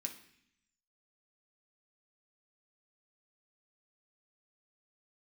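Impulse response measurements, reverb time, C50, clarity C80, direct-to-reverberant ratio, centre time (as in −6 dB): 0.65 s, 10.0 dB, 13.5 dB, 2.0 dB, 15 ms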